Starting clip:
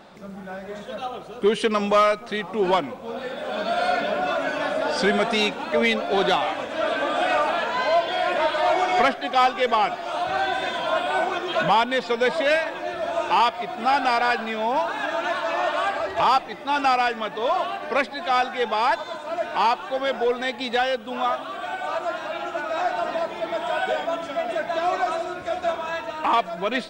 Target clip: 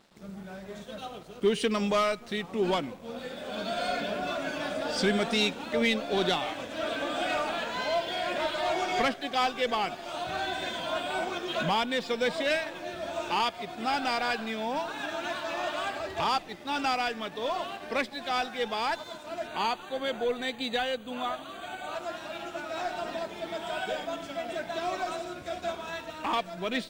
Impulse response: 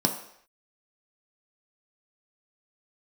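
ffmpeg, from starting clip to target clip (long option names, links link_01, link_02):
-filter_complex "[0:a]equalizer=frequency=970:width_type=o:width=2.8:gain=-9.5,aeval=exprs='sgn(val(0))*max(abs(val(0))-0.00211,0)':channel_layout=same,asettb=1/sr,asplit=3[link_01][link_02][link_03];[link_01]atrim=end=19.474[link_04];[link_02]atrim=start=19.47:end=21.95,asetpts=PTS-STARTPTS,afade=type=in:duration=0.004:curve=qsin,afade=type=out:start_time=2.476:duration=0.004:curve=qsin,asuperstop=centerf=5300:order=12:qfactor=4.8[link_05];[link_03]atrim=start=21.946[link_06];[link_04][link_05]acrossfade=duration=0.004:curve1=hsin:curve2=qsin[link_07];[link_07][link_06]acrossfade=duration=0.004:curve1=qsin:curve2=hsin"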